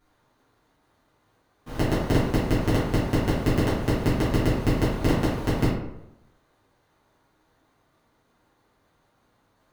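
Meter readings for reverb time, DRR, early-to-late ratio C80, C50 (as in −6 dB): 0.85 s, −11.5 dB, 4.5 dB, 1.0 dB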